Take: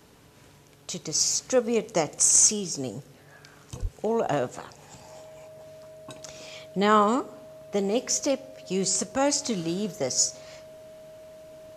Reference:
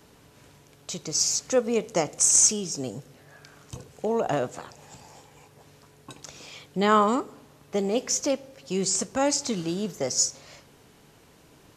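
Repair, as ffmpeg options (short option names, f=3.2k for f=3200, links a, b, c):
-filter_complex "[0:a]bandreject=f=630:w=30,asplit=3[a][b][c];[a]afade=t=out:st=3.81:d=0.02[d];[b]highpass=f=140:w=0.5412,highpass=f=140:w=1.3066,afade=t=in:st=3.81:d=0.02,afade=t=out:st=3.93:d=0.02[e];[c]afade=t=in:st=3.93:d=0.02[f];[d][e][f]amix=inputs=3:normalize=0"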